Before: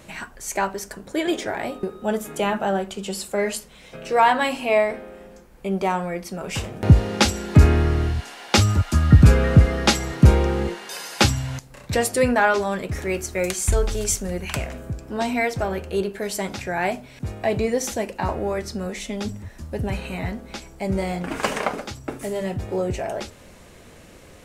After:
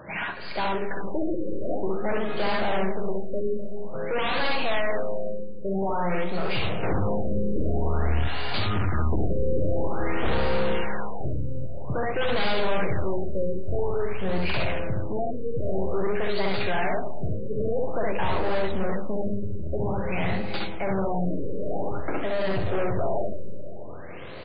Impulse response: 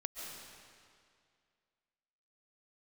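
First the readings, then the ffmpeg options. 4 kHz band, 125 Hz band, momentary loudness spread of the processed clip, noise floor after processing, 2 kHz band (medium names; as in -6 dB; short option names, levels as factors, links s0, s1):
-6.0 dB, -10.0 dB, 6 LU, -29 dBFS, -4.5 dB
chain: -filter_complex "[0:a]highpass=120,equalizer=f=230:w=2.3:g=-7.5,bandreject=f=50:t=h:w=6,bandreject=f=100:t=h:w=6,bandreject=f=150:t=h:w=6,bandreject=f=200:t=h:w=6,bandreject=f=250:t=h:w=6,bandreject=f=300:t=h:w=6,bandreject=f=350:t=h:w=6,bandreject=f=400:t=h:w=6,bandreject=f=450:t=h:w=6,aresample=16000,aeval=exprs='0.126*(abs(mod(val(0)/0.126+3,4)-2)-1)':c=same,aresample=44100,aecho=1:1:63|73:0.631|0.562,aeval=exprs='(tanh(39.8*val(0)+0.3)-tanh(0.3))/39.8':c=same,asplit=2[s0][s1];[1:a]atrim=start_sample=2205,lowshelf=f=260:g=7.5[s2];[s1][s2]afir=irnorm=-1:irlink=0,volume=0.447[s3];[s0][s3]amix=inputs=2:normalize=0,afftfilt=real='re*lt(b*sr/1024,570*pow(5000/570,0.5+0.5*sin(2*PI*0.5*pts/sr)))':imag='im*lt(b*sr/1024,570*pow(5000/570,0.5+0.5*sin(2*PI*0.5*pts/sr)))':win_size=1024:overlap=0.75,volume=1.68"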